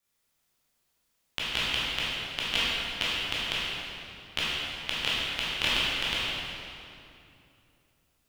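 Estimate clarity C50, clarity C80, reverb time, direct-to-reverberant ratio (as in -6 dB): -4.0 dB, -2.0 dB, 2.8 s, -9.0 dB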